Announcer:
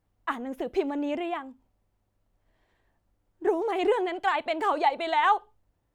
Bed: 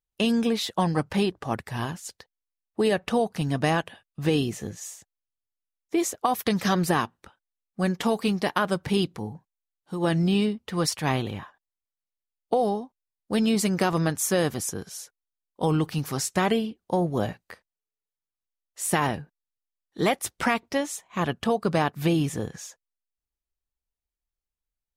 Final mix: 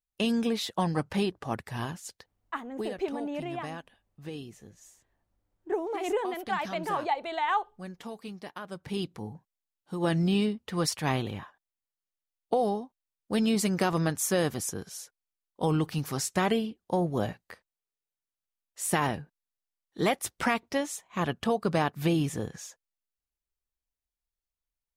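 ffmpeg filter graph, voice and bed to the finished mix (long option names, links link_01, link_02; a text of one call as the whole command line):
ffmpeg -i stem1.wav -i stem2.wav -filter_complex "[0:a]adelay=2250,volume=-5dB[link_01];[1:a]volume=9.5dB,afade=type=out:start_time=2.63:duration=0.27:silence=0.237137,afade=type=in:start_time=8.67:duration=0.79:silence=0.211349[link_02];[link_01][link_02]amix=inputs=2:normalize=0" out.wav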